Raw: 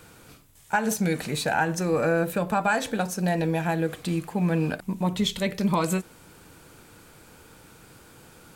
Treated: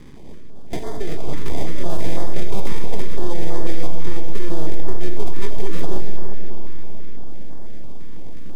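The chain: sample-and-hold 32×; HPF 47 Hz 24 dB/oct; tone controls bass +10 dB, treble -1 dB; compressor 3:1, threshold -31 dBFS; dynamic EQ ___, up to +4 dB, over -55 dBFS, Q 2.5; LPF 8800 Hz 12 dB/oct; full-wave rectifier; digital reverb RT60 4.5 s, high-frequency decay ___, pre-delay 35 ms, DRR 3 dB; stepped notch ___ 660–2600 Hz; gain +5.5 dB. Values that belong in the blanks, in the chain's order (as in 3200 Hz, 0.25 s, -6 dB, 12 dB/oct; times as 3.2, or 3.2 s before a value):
1100 Hz, 0.85×, 6 Hz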